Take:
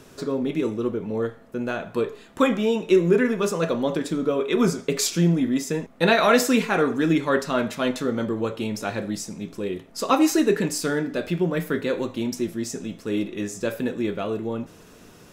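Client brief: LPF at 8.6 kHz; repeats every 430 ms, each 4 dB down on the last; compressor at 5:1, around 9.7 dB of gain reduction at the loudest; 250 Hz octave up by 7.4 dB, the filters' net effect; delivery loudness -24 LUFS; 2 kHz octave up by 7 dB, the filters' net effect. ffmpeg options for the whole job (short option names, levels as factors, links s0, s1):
-af "lowpass=8600,equalizer=f=250:t=o:g=9,equalizer=f=2000:t=o:g=9,acompressor=threshold=0.112:ratio=5,aecho=1:1:430|860|1290|1720|2150|2580|3010|3440|3870:0.631|0.398|0.25|0.158|0.0994|0.0626|0.0394|0.0249|0.0157,volume=0.794"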